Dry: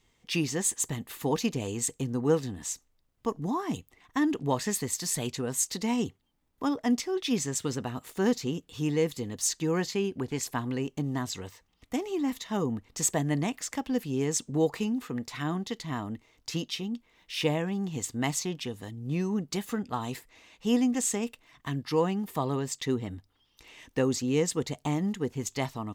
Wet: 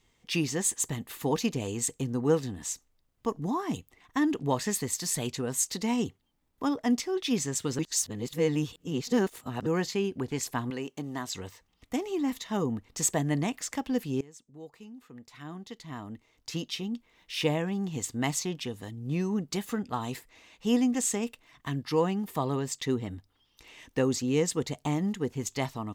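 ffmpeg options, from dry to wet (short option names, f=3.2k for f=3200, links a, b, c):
-filter_complex "[0:a]asettb=1/sr,asplit=3[a][b][c];[a]atrim=end=10.704[d];[b]atrim=start=10.7:end=11.35,asetpts=PTS-STARTPTS,afade=t=in:d=0.004:c=qsin,afade=t=out:st=0.646:d=0.004:c=qsin,highpass=f=370:p=1[e];[c]atrim=start=11.346[f];[d][e]acrossfade=d=0.004:c1=hsin:c2=qsin[g];[g][f]acrossfade=d=0.004:c1=qsin:c2=hsin,asplit=4[h][i][j][k];[h]atrim=end=7.792[l];[i]atrim=start=7.788:end=9.662,asetpts=PTS-STARTPTS,areverse[m];[j]atrim=start=9.658:end=14.21,asetpts=PTS-STARTPTS,afade=t=out:st=4.548:d=0.004:c=hsin:silence=0.0749894[n];[k]atrim=start=14.21,asetpts=PTS-STARTPTS,afade=t=in:d=2.65:c=qua:silence=0.0749894[o];[l][m]acrossfade=d=0.004:c1=hsin:c2=hsin[p];[n][o]concat=n=2:v=0:a=1[q];[p][q]acrossfade=d=0.004:c1=hsin:c2=hsin"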